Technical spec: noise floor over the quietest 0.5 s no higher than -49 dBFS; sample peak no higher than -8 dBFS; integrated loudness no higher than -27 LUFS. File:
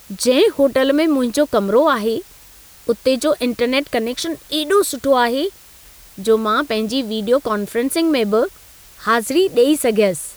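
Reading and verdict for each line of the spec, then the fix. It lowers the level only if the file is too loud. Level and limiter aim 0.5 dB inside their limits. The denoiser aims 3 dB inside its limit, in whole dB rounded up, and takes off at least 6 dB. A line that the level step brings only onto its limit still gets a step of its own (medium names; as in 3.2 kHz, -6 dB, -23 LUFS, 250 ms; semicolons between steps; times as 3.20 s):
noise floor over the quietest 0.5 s -44 dBFS: fail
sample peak -4.0 dBFS: fail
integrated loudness -17.5 LUFS: fail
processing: trim -10 dB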